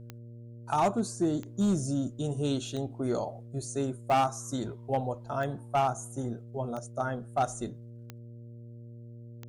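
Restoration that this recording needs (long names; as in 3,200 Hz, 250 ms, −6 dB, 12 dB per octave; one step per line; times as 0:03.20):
clipped peaks rebuilt −20 dBFS
click removal
hum removal 117.6 Hz, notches 5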